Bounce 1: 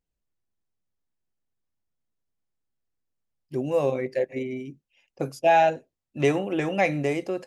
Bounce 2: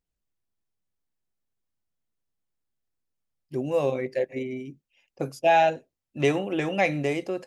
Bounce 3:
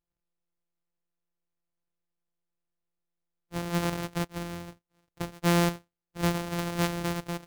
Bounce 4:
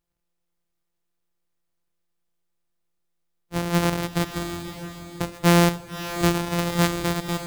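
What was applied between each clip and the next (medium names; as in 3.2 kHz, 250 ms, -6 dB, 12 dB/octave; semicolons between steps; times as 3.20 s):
dynamic bell 3.4 kHz, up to +4 dB, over -44 dBFS, Q 1.5; trim -1 dB
sorted samples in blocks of 256 samples; trim -4.5 dB
echo that smears into a reverb 566 ms, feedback 43%, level -10 dB; trim +7 dB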